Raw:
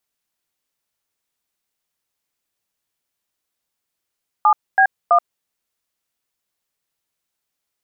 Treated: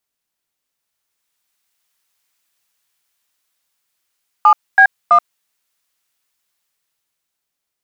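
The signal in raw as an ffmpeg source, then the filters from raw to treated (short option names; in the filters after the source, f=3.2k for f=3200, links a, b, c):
-f lavfi -i "aevalsrc='0.251*clip(min(mod(t,0.329),0.079-mod(t,0.329))/0.002,0,1)*(eq(floor(t/0.329),0)*(sin(2*PI*852*mod(t,0.329))+sin(2*PI*1209*mod(t,0.329)))+eq(floor(t/0.329),1)*(sin(2*PI*770*mod(t,0.329))+sin(2*PI*1633*mod(t,0.329)))+eq(floor(t/0.329),2)*(sin(2*PI*697*mod(t,0.329))+sin(2*PI*1209*mod(t,0.329))))':d=0.987:s=44100"
-filter_complex "[0:a]acrossover=split=890[a][b];[a]volume=26.5dB,asoftclip=hard,volume=-26.5dB[c];[b]dynaudnorm=f=240:g=11:m=10.5dB[d];[c][d]amix=inputs=2:normalize=0"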